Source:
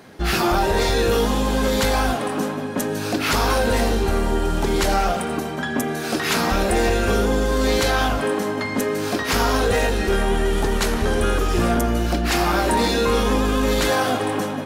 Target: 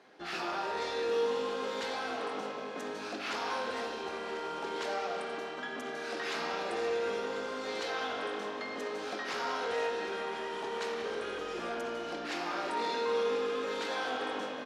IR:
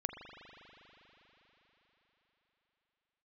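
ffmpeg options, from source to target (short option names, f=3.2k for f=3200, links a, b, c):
-filter_complex "[0:a]alimiter=limit=-14dB:level=0:latency=1,highpass=360,lowpass=5.3k,aecho=1:1:1042:0.2[a];[1:a]atrim=start_sample=2205,asetrate=74970,aresample=44100[b];[a][b]afir=irnorm=-1:irlink=0,volume=-7dB"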